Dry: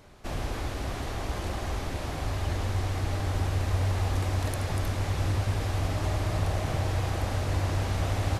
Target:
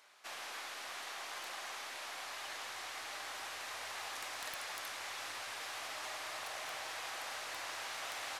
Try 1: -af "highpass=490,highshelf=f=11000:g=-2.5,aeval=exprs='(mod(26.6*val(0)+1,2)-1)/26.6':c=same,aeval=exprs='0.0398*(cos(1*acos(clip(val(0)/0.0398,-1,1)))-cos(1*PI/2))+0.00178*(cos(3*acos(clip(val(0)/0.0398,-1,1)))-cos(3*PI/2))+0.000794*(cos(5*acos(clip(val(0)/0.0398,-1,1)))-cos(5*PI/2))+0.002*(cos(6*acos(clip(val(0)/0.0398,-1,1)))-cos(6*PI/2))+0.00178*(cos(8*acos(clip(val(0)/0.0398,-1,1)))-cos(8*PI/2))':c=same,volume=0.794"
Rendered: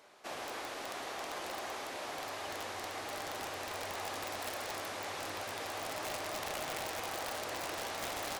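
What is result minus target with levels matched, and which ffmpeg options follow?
500 Hz band +7.5 dB
-af "highpass=1200,highshelf=f=11000:g=-2.5,aeval=exprs='(mod(26.6*val(0)+1,2)-1)/26.6':c=same,aeval=exprs='0.0398*(cos(1*acos(clip(val(0)/0.0398,-1,1)))-cos(1*PI/2))+0.00178*(cos(3*acos(clip(val(0)/0.0398,-1,1)))-cos(3*PI/2))+0.000794*(cos(5*acos(clip(val(0)/0.0398,-1,1)))-cos(5*PI/2))+0.002*(cos(6*acos(clip(val(0)/0.0398,-1,1)))-cos(6*PI/2))+0.00178*(cos(8*acos(clip(val(0)/0.0398,-1,1)))-cos(8*PI/2))':c=same,volume=0.794"

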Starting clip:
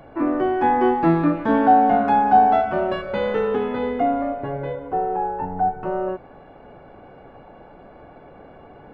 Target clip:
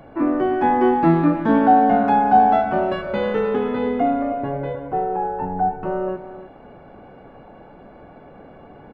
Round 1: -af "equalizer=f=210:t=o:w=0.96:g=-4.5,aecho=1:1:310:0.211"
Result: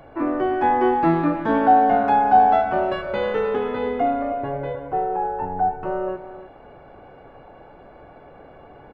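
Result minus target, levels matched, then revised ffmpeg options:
250 Hz band -3.5 dB
-af "equalizer=f=210:t=o:w=0.96:g=4,aecho=1:1:310:0.211"

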